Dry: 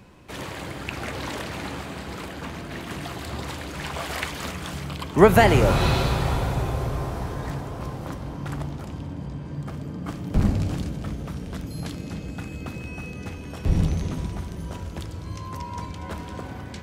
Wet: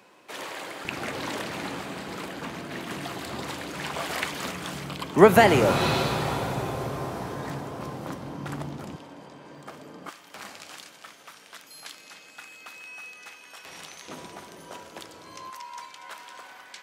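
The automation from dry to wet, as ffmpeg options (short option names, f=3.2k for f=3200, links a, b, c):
-af "asetnsamples=n=441:p=0,asendcmd='0.85 highpass f 170;8.96 highpass f 460;10.09 highpass f 1200;14.08 highpass f 470;15.5 highpass f 1100',highpass=430"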